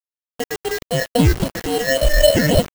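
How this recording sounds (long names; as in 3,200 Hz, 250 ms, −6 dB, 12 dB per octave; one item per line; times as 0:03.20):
aliases and images of a low sample rate 1,200 Hz, jitter 0%
phaser sweep stages 6, 3.6 Hz, lowest notch 800–1,900 Hz
a quantiser's noise floor 6 bits, dither none
Ogg Vorbis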